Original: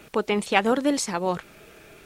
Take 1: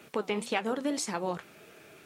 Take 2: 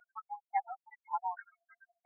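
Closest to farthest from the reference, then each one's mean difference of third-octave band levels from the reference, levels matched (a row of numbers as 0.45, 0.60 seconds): 1, 2; 2.5, 23.0 decibels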